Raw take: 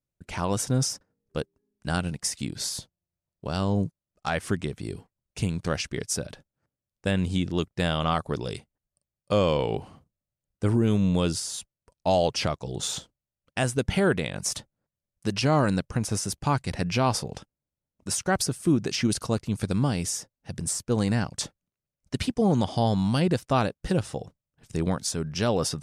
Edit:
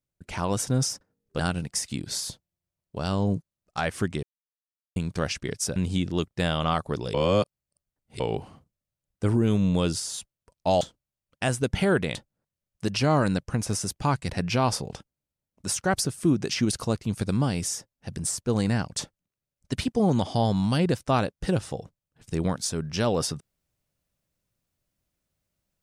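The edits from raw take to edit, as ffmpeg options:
ffmpeg -i in.wav -filter_complex "[0:a]asplit=9[link_01][link_02][link_03][link_04][link_05][link_06][link_07][link_08][link_09];[link_01]atrim=end=1.392[link_10];[link_02]atrim=start=1.878:end=4.72,asetpts=PTS-STARTPTS,afade=type=out:start_time=2.838:duration=0.004:curve=hsin[link_11];[link_03]atrim=start=4.72:end=5.45,asetpts=PTS-STARTPTS,volume=0[link_12];[link_04]atrim=start=5.45:end=6.252,asetpts=PTS-STARTPTS,afade=type=in:duration=0.004:curve=hsin[link_13];[link_05]atrim=start=7.158:end=8.542[link_14];[link_06]atrim=start=8.538:end=9.602,asetpts=PTS-STARTPTS,areverse[link_15];[link_07]atrim=start=9.598:end=12.212[link_16];[link_08]atrim=start=12.958:end=14.302[link_17];[link_09]atrim=start=14.568[link_18];[link_11][link_12][link_13]concat=n=3:v=0:a=1[link_19];[link_10][link_19]acrossfade=duration=0.004:curve1=hsin:curve2=hsin[link_20];[link_20][link_14]acrossfade=duration=0.004:curve1=hsin:curve2=hsin[link_21];[link_21][link_15]acrossfade=duration=0.004:curve1=hsin:curve2=hsin[link_22];[link_22][link_16]acrossfade=duration=0.004:curve1=hsin:curve2=hsin[link_23];[link_23][link_17]acrossfade=duration=0.004:curve1=hsin:curve2=hsin[link_24];[link_24][link_18]acrossfade=duration=0.004:curve1=hsin:curve2=hsin" out.wav

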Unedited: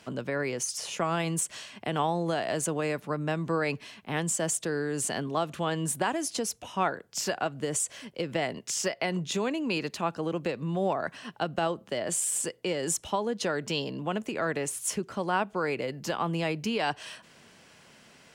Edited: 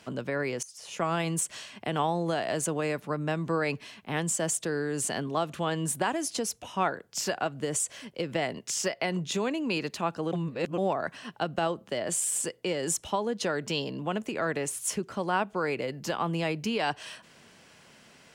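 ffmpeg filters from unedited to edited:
ffmpeg -i in.wav -filter_complex "[0:a]asplit=4[link_01][link_02][link_03][link_04];[link_01]atrim=end=0.63,asetpts=PTS-STARTPTS,afade=type=out:start_time=0.626:duration=0.004:curve=hsin:silence=0.149624[link_05];[link_02]atrim=start=0.63:end=10.332,asetpts=PTS-STARTPTS,afade=type=in:duration=0.4:curve=qua:silence=0.149624[link_06];[link_03]atrim=start=10.328:end=10.782,asetpts=PTS-STARTPTS,areverse[link_07];[link_04]atrim=start=10.778[link_08];[link_05][link_06]concat=n=2:v=0:a=1[link_09];[link_09][link_07]acrossfade=duration=0.004:curve1=hsin:curve2=hsin[link_10];[link_10][link_08]acrossfade=duration=0.004:curve1=hsin:curve2=hsin" out.wav

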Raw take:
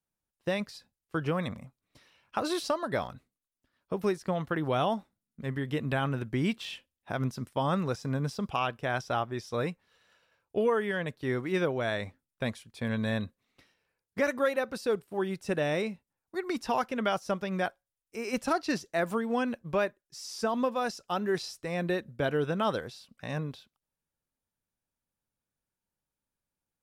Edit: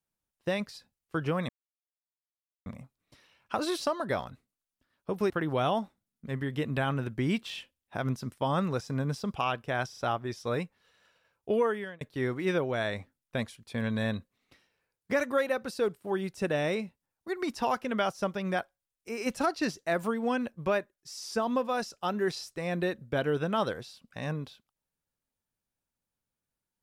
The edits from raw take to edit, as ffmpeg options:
ffmpeg -i in.wav -filter_complex "[0:a]asplit=6[link_01][link_02][link_03][link_04][link_05][link_06];[link_01]atrim=end=1.49,asetpts=PTS-STARTPTS,afade=type=out:start_time=1.486:duration=0.004:curve=hsin,apad=pad_dur=1.17[link_07];[link_02]atrim=start=1.49:end=4.132,asetpts=PTS-STARTPTS,afade=type=in:duration=0.004:curve=hsin[link_08];[link_03]atrim=start=4.448:end=9.082[link_09];[link_04]atrim=start=9.038:end=9.082[link_10];[link_05]atrim=start=9.038:end=11.08,asetpts=PTS-STARTPTS,afade=type=out:start_time=1.682:duration=0.36[link_11];[link_06]atrim=start=11.08,asetpts=PTS-STARTPTS,afade=type=in:duration=0.004:curve=hsin[link_12];[link_07][link_08]concat=n=2:v=0:a=1[link_13];[link_13][link_09]acrossfade=duration=0.004:curve1=hsin:curve2=hsin[link_14];[link_14][link_10]acrossfade=duration=0.004:curve1=hsin:curve2=hsin[link_15];[link_11][link_12]concat=n=2:v=0:a=1[link_16];[link_15][link_16]acrossfade=duration=0.004:curve1=hsin:curve2=hsin" out.wav

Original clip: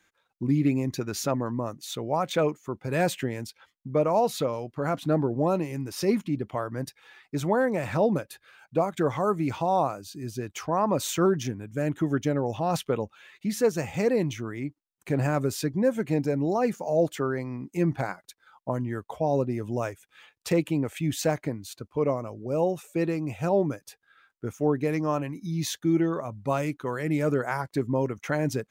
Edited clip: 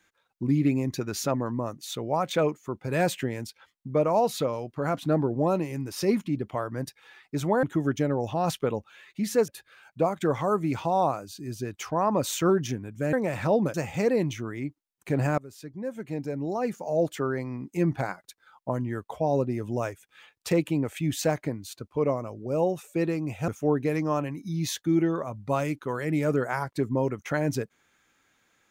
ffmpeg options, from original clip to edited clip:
ffmpeg -i in.wav -filter_complex "[0:a]asplit=7[link_01][link_02][link_03][link_04][link_05][link_06][link_07];[link_01]atrim=end=7.632[link_08];[link_02]atrim=start=11.888:end=13.742[link_09];[link_03]atrim=start=8.238:end=11.892[link_10];[link_04]atrim=start=7.628:end=8.242[link_11];[link_05]atrim=start=13.738:end=15.38,asetpts=PTS-STARTPTS,afade=type=out:start_time=1.638:duration=0.004:curve=hsin:silence=0.0891251[link_12];[link_06]atrim=start=15.38:end=23.482,asetpts=PTS-STARTPTS,afade=type=in:duration=1.99:silence=0.0891251[link_13];[link_07]atrim=start=24.458[link_14];[link_08][link_09]acrossfade=duration=0.004:curve1=hsin:curve2=hsin[link_15];[link_15][link_10]acrossfade=duration=0.004:curve1=hsin:curve2=hsin[link_16];[link_16][link_11]acrossfade=duration=0.004:curve1=hsin:curve2=hsin[link_17];[link_12][link_13]concat=n=2:v=0:a=1[link_18];[link_17][link_18]acrossfade=duration=0.004:curve1=hsin:curve2=hsin[link_19];[link_19][link_14]acrossfade=duration=0.004:curve1=hsin:curve2=hsin" out.wav

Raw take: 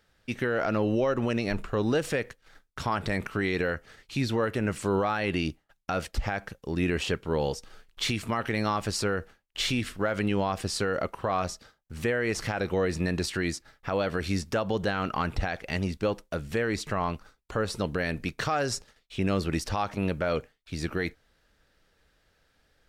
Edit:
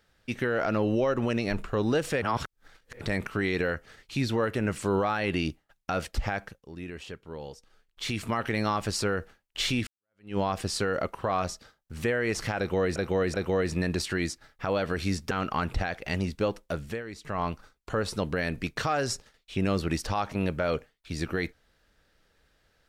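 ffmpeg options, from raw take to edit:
ffmpeg -i in.wav -filter_complex "[0:a]asplit=11[link_01][link_02][link_03][link_04][link_05][link_06][link_07][link_08][link_09][link_10][link_11];[link_01]atrim=end=2.222[link_12];[link_02]atrim=start=2.218:end=3.012,asetpts=PTS-STARTPTS,areverse[link_13];[link_03]atrim=start=3.008:end=6.63,asetpts=PTS-STARTPTS,afade=type=out:start_time=3.362:duration=0.26:silence=0.237137[link_14];[link_04]atrim=start=6.63:end=7.94,asetpts=PTS-STARTPTS,volume=-12.5dB[link_15];[link_05]atrim=start=7.94:end=9.87,asetpts=PTS-STARTPTS,afade=type=in:duration=0.26:silence=0.237137,afade=type=out:start_time=1.926:duration=0.004:curve=hsin[link_16];[link_06]atrim=start=9.87:end=12.962,asetpts=PTS-STARTPTS,afade=type=in:duration=0.5:curve=exp[link_17];[link_07]atrim=start=12.578:end=12.962[link_18];[link_08]atrim=start=12.578:end=14.552[link_19];[link_09]atrim=start=14.928:end=16.65,asetpts=PTS-STARTPTS,afade=type=out:start_time=1.482:duration=0.24:silence=0.266073[link_20];[link_10]atrim=start=16.65:end=16.82,asetpts=PTS-STARTPTS,volume=-11.5dB[link_21];[link_11]atrim=start=16.82,asetpts=PTS-STARTPTS,afade=type=in:duration=0.24:silence=0.266073[link_22];[link_12][link_13]acrossfade=duration=0.004:curve1=hsin:curve2=hsin[link_23];[link_14][link_15][link_16][link_17]concat=n=4:v=0:a=1[link_24];[link_23][link_24]acrossfade=duration=0.004:curve1=hsin:curve2=hsin[link_25];[link_25][link_18]acrossfade=duration=0.004:curve1=hsin:curve2=hsin[link_26];[link_26][link_19]acrossfade=duration=0.004:curve1=hsin:curve2=hsin[link_27];[link_20][link_21][link_22]concat=n=3:v=0:a=1[link_28];[link_27][link_28]acrossfade=duration=0.004:curve1=hsin:curve2=hsin" out.wav

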